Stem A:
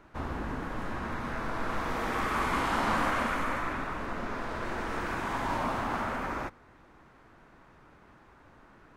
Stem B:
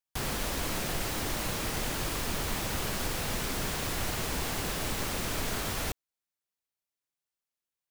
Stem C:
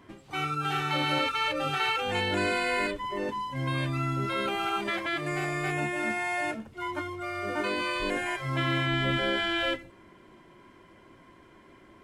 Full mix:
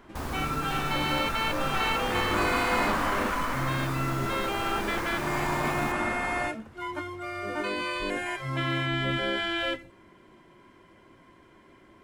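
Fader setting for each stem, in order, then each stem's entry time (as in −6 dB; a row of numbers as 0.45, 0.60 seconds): +0.5, −9.5, −1.0 decibels; 0.00, 0.00, 0.00 seconds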